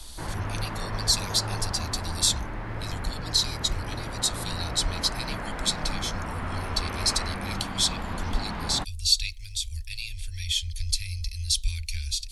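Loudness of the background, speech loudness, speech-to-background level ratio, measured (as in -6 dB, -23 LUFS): -34.5 LUFS, -28.5 LUFS, 6.0 dB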